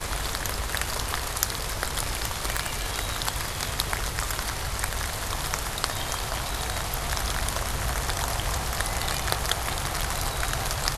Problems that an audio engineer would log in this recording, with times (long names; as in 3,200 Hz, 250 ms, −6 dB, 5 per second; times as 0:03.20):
0:02.45–0:02.66: clipping −14.5 dBFS